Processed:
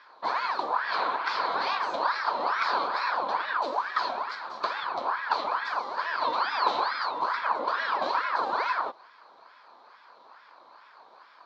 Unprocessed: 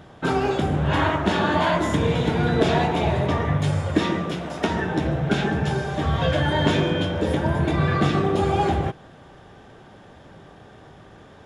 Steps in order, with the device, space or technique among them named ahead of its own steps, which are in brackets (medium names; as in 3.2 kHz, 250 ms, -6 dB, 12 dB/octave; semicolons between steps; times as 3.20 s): voice changer toy (ring modulator with a swept carrier 1.1 kHz, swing 65%, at 2.3 Hz; cabinet simulation 550–5000 Hz, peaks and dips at 1 kHz +9 dB, 2 kHz -9 dB, 2.8 kHz -9 dB, 4.3 kHz +9 dB); trim -4.5 dB